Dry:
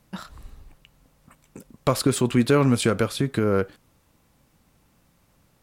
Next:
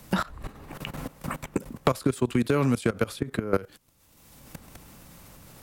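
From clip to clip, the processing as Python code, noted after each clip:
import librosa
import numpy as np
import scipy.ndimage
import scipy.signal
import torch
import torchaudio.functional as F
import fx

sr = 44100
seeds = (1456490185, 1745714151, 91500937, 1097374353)

y = fx.level_steps(x, sr, step_db=20)
y = fx.high_shelf(y, sr, hz=7000.0, db=5.5)
y = fx.band_squash(y, sr, depth_pct=100)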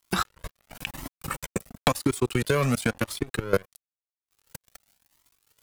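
y = fx.high_shelf(x, sr, hz=2600.0, db=9.5)
y = np.sign(y) * np.maximum(np.abs(y) - 10.0 ** (-37.5 / 20.0), 0.0)
y = fx.comb_cascade(y, sr, direction='rising', hz=0.96)
y = y * 10.0 ** (5.5 / 20.0)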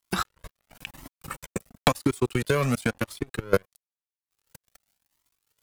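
y = fx.upward_expand(x, sr, threshold_db=-37.0, expansion=1.5)
y = y * 10.0 ** (2.0 / 20.0)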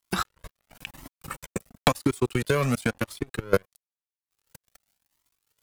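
y = x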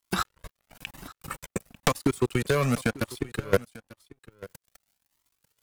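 y = np.minimum(x, 2.0 * 10.0 ** (-15.0 / 20.0) - x)
y = y + 10.0 ** (-19.5 / 20.0) * np.pad(y, (int(894 * sr / 1000.0), 0))[:len(y)]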